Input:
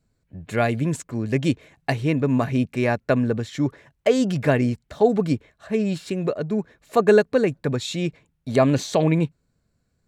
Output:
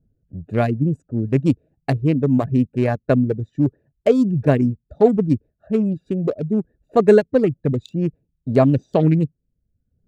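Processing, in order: local Wiener filter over 41 samples; treble shelf 3 kHz +6.5 dB; reverb removal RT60 0.71 s; tilt shelf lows +6.5 dB, about 930 Hz

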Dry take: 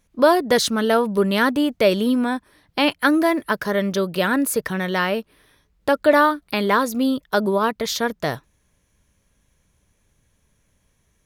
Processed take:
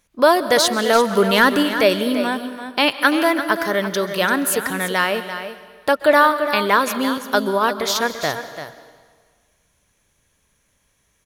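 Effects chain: bass shelf 400 Hz -9.5 dB; 0.95–1.63 s: waveshaping leveller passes 1; delay 340 ms -10.5 dB; plate-style reverb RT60 1.6 s, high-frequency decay 0.9×, pre-delay 115 ms, DRR 13 dB; trim +4 dB

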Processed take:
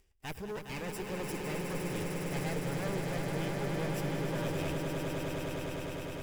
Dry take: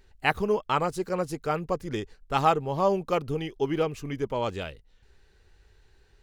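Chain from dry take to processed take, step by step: comb filter that takes the minimum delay 0.39 ms; treble shelf 6.4 kHz +11.5 dB; band-stop 4.3 kHz, Q 8.7; waveshaping leveller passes 2; reverse; compression, threshold -37 dBFS, peak gain reduction 20 dB; reverse; saturation -34 dBFS, distortion -17 dB; on a send: echo with a slow build-up 102 ms, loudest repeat 8, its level -6.5 dB

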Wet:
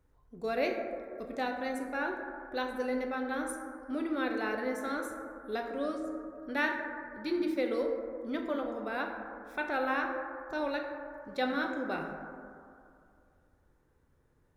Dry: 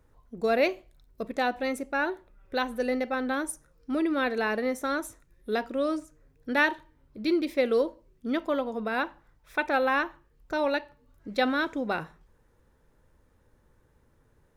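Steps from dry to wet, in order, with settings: plate-style reverb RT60 2.4 s, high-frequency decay 0.25×, DRR 2 dB; trim -8 dB

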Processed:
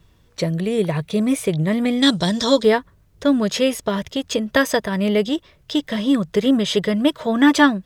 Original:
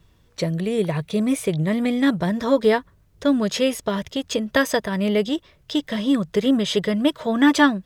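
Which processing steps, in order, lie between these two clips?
2.02–2.63 s: high-order bell 5.3 kHz +15 dB; trim +2 dB

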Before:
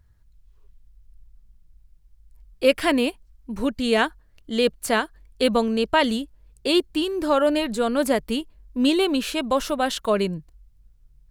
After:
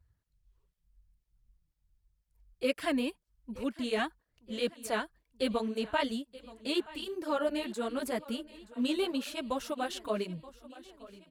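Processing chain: feedback delay 926 ms, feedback 52%, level -18.5 dB; cancelling through-zero flanger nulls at 2 Hz, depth 6.9 ms; trim -8.5 dB

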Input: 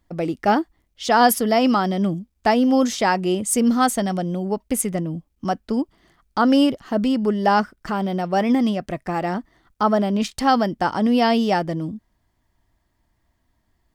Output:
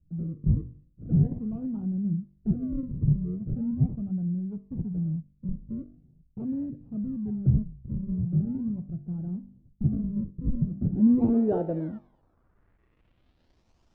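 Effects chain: companding laws mixed up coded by mu; de-hum 48.84 Hz, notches 20; decimation with a swept rate 39×, swing 100% 0.41 Hz; low-pass sweep 150 Hz -> 5.9 kHz, 10.69–13.67 s; repeats whose band climbs or falls 228 ms, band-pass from 3.5 kHz, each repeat 0.7 oct, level -10.5 dB; trim -7 dB

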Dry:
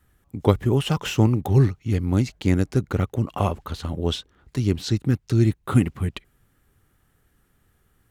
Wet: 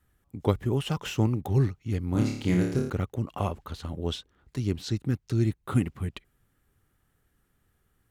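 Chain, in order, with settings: 2.12–2.90 s: flutter echo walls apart 4.8 m, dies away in 0.62 s; trim -6.5 dB

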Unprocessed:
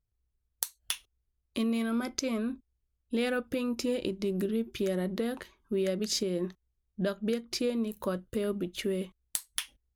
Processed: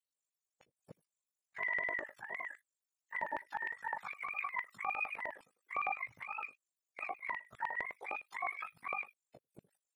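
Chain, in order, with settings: spectrum inverted on a logarithmic axis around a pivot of 670 Hz; ring modulator 25 Hz; LFO high-pass square 9.8 Hz 580–2400 Hz; trim -4.5 dB

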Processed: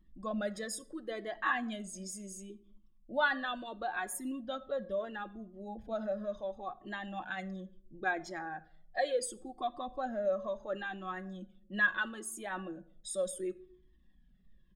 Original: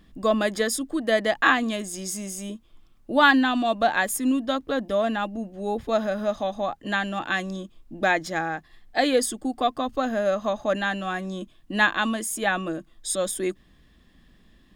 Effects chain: resonances exaggerated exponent 1.5; comb 5.4 ms, depth 44%; wow and flutter 19 cents; on a send at -15 dB: reverberation RT60 0.60 s, pre-delay 13 ms; on the sum: Shepard-style flanger falling 0.72 Hz; trim -8.5 dB

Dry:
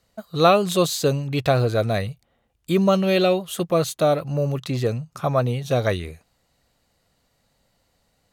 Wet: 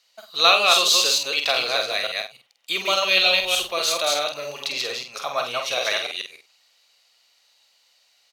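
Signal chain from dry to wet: chunks repeated in reverse 148 ms, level -2 dB; high-pass 920 Hz 12 dB/octave; high-order bell 3.8 kHz +9.5 dB; 3.16–3.66 s: added noise pink -51 dBFS; multi-tap echo 48/98 ms -6/-19 dB

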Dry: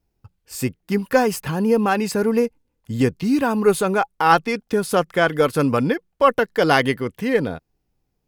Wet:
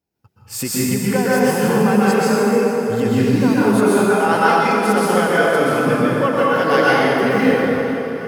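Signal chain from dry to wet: recorder AGC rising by 19 dB/s; Bessel high-pass 150 Hz; thinning echo 446 ms, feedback 63%, level -15 dB; plate-style reverb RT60 3.4 s, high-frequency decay 0.55×, pre-delay 110 ms, DRR -8.5 dB; trim -6 dB

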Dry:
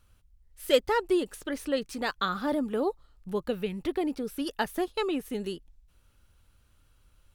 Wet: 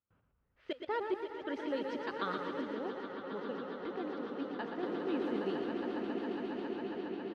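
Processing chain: compression 1.5:1, threshold -54 dBFS, peak gain reduction 13.5 dB; trance gate ".xxxxxx.xxx." 145 bpm -24 dB; echo with a slow build-up 137 ms, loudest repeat 8, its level -10.5 dB; 2.61–4.83 s: flange 1.2 Hz, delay 3.3 ms, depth 1 ms, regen +77%; level-controlled noise filter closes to 1.3 kHz, open at -34.5 dBFS; high-pass 160 Hz 12 dB/octave; distance through air 220 m; frequency-shifting echo 104 ms, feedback 59%, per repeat -34 Hz, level -19.5 dB; modulated delay 118 ms, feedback 49%, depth 118 cents, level -7 dB; trim +2.5 dB

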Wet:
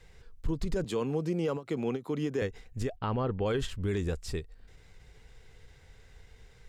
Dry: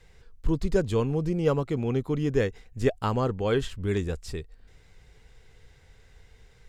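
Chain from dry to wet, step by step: 0.84–2.42 s: Bessel high-pass 210 Hz, order 8; peak limiter -22 dBFS, peak gain reduction 11.5 dB; 2.96–3.46 s: low-pass 3.8 kHz 24 dB/octave; endings held to a fixed fall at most 270 dB/s

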